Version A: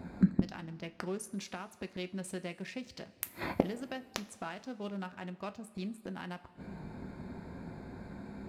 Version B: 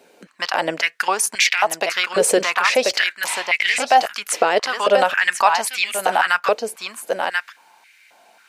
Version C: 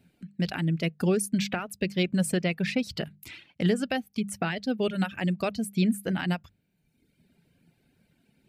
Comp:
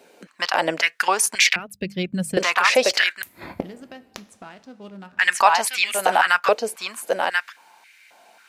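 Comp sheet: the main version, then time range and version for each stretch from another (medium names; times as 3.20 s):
B
1.56–2.37 s: from C
3.22–5.19 s: from A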